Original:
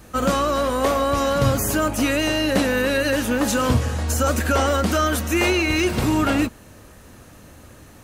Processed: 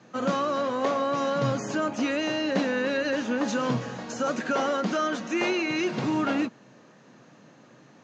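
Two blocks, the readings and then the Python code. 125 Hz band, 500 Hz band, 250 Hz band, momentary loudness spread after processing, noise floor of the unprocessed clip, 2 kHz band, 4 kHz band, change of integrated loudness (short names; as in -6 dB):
-12.0 dB, -5.5 dB, -5.5 dB, 3 LU, -46 dBFS, -7.0 dB, -8.5 dB, -6.5 dB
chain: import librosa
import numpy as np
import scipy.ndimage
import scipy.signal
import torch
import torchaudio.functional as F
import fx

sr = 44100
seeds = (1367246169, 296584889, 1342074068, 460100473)

y = scipy.signal.sosfilt(scipy.signal.cheby1(5, 1.0, [130.0, 6800.0], 'bandpass', fs=sr, output='sos'), x)
y = fx.high_shelf(y, sr, hz=4500.0, db=-7.5)
y = fx.notch(y, sr, hz=1300.0, q=28.0)
y = y * librosa.db_to_amplitude(-5.0)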